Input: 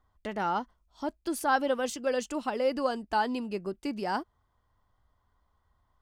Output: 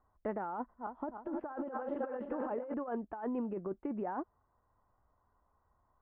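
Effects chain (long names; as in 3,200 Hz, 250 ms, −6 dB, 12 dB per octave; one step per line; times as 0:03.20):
0:00.56–0:02.74: feedback delay that plays each chunk backwards 154 ms, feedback 69%, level −10 dB
Bessel low-pass filter 1,000 Hz, order 6
low-shelf EQ 240 Hz −10.5 dB
compressor whose output falls as the input rises −38 dBFS, ratio −1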